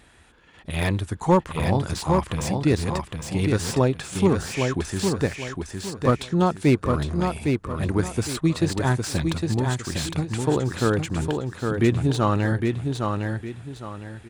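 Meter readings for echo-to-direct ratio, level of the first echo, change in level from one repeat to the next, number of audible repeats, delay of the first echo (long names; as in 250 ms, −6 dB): −4.0 dB, −4.5 dB, −10.0 dB, 3, 809 ms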